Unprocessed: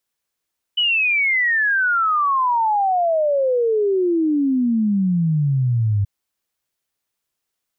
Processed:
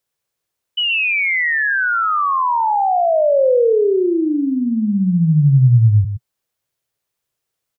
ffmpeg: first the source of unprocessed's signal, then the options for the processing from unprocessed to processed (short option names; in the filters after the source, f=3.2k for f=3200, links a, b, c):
-f lavfi -i "aevalsrc='0.178*clip(min(t,5.28-t)/0.01,0,1)*sin(2*PI*3000*5.28/log(98/3000)*(exp(log(98/3000)*t/5.28)-1))':d=5.28:s=44100"
-af "equalizer=f=125:t=o:w=1:g=8,equalizer=f=250:t=o:w=1:g=-3,equalizer=f=500:t=o:w=1:g=5,aecho=1:1:121:0.335"